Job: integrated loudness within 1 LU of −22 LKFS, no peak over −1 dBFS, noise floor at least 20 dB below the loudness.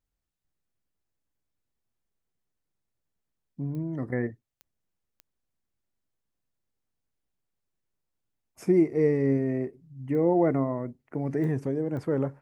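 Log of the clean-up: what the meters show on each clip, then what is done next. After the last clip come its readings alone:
number of clicks 6; integrated loudness −27.5 LKFS; sample peak −11.5 dBFS; target loudness −22.0 LKFS
→ click removal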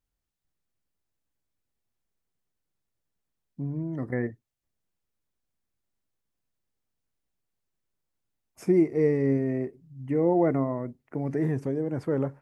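number of clicks 0; integrated loudness −27.5 LKFS; sample peak −11.5 dBFS; target loudness −22.0 LKFS
→ level +5.5 dB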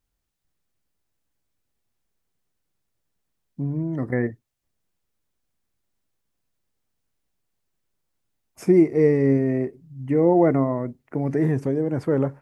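integrated loudness −22.0 LKFS; sample peak −6.0 dBFS; background noise floor −78 dBFS

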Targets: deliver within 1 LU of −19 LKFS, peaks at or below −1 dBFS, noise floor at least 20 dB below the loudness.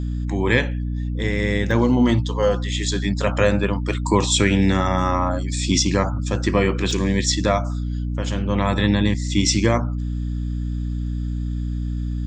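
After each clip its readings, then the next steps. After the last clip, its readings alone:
number of dropouts 2; longest dropout 1.2 ms; mains hum 60 Hz; hum harmonics up to 300 Hz; level of the hum −22 dBFS; integrated loudness −21.0 LKFS; sample peak −3.0 dBFS; target loudness −19.0 LKFS
→ repair the gap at 0:01.71/0:06.91, 1.2 ms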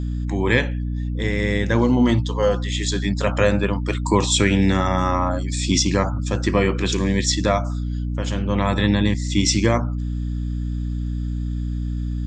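number of dropouts 0; mains hum 60 Hz; hum harmonics up to 300 Hz; level of the hum −22 dBFS
→ mains-hum notches 60/120/180/240/300 Hz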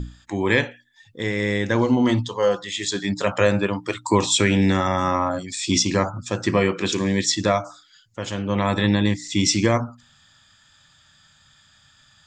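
mains hum none found; integrated loudness −21.5 LKFS; sample peak −4.5 dBFS; target loudness −19.0 LKFS
→ level +2.5 dB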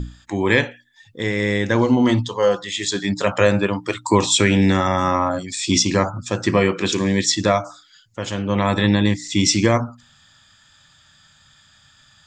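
integrated loudness −19.0 LKFS; sample peak −2.0 dBFS; background noise floor −54 dBFS

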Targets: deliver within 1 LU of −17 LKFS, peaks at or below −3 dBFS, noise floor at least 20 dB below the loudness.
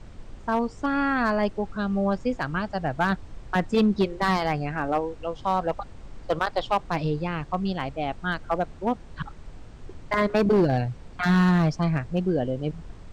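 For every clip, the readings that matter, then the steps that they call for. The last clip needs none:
share of clipped samples 1.0%; peaks flattened at −15.0 dBFS; background noise floor −44 dBFS; target noise floor −46 dBFS; integrated loudness −26.0 LKFS; sample peak −15.0 dBFS; target loudness −17.0 LKFS
→ clipped peaks rebuilt −15 dBFS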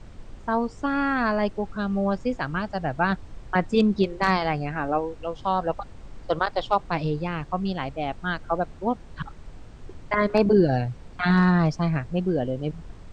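share of clipped samples 0.0%; background noise floor −44 dBFS; target noise floor −45 dBFS
→ noise reduction from a noise print 6 dB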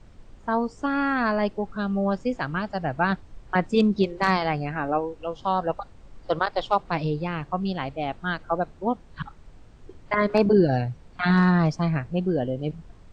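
background noise floor −49 dBFS; integrated loudness −25.0 LKFS; sample peak −7.5 dBFS; target loudness −17.0 LKFS
→ level +8 dB
brickwall limiter −3 dBFS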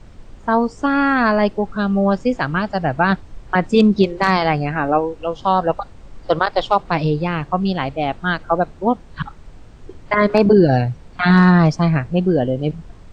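integrated loudness −17.5 LKFS; sample peak −3.0 dBFS; background noise floor −42 dBFS

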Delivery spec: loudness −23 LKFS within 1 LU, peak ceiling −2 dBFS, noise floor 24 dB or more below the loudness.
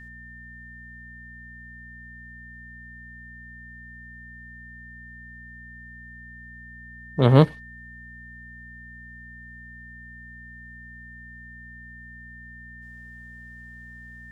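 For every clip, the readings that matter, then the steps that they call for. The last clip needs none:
mains hum 60 Hz; hum harmonics up to 240 Hz; level of the hum −45 dBFS; interfering tone 1,800 Hz; level of the tone −43 dBFS; integrated loudness −19.5 LKFS; sample peak −1.5 dBFS; target loudness −23.0 LKFS
→ hum removal 60 Hz, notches 4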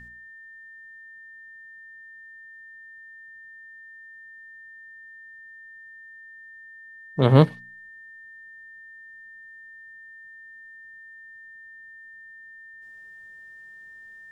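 mains hum none found; interfering tone 1,800 Hz; level of the tone −43 dBFS
→ notch filter 1,800 Hz, Q 30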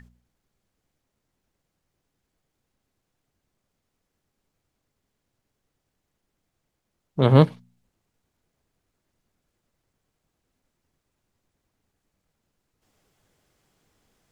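interfering tone none found; integrated loudness −19.0 LKFS; sample peak −1.5 dBFS; target loudness −23.0 LKFS
→ level −4 dB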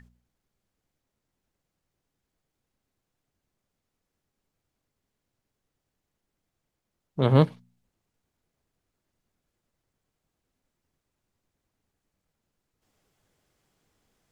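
integrated loudness −23.0 LKFS; sample peak −5.5 dBFS; background noise floor −84 dBFS

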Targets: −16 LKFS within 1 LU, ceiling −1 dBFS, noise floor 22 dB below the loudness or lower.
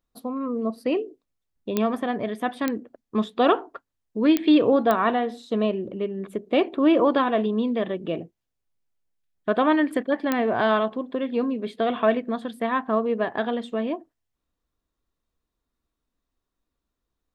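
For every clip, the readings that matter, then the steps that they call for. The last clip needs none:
number of clicks 5; integrated loudness −24.0 LKFS; sample peak −5.0 dBFS; target loudness −16.0 LKFS
→ click removal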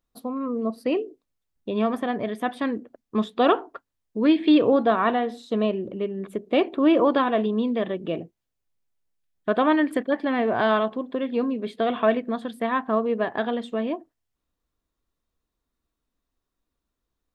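number of clicks 0; integrated loudness −24.0 LKFS; sample peak −7.0 dBFS; target loudness −16.0 LKFS
→ level +8 dB
brickwall limiter −1 dBFS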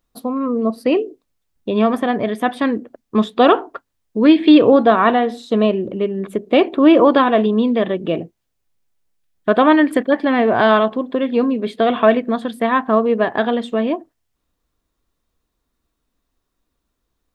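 integrated loudness −16.0 LKFS; sample peak −1.0 dBFS; background noise floor −75 dBFS

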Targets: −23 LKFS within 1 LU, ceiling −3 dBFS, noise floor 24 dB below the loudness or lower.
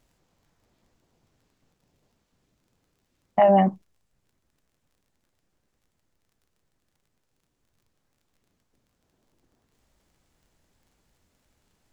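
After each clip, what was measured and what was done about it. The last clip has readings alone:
crackle rate 20 per second; integrated loudness −20.5 LKFS; sample peak −7.5 dBFS; target loudness −23.0 LKFS
→ click removal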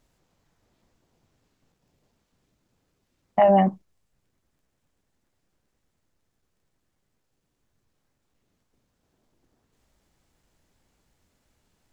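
crackle rate 0 per second; integrated loudness −20.5 LKFS; sample peak −7.5 dBFS; target loudness −23.0 LKFS
→ level −2.5 dB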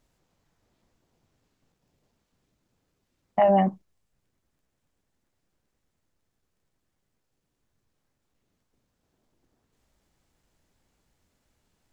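integrated loudness −23.0 LKFS; sample peak −10.0 dBFS; background noise floor −78 dBFS

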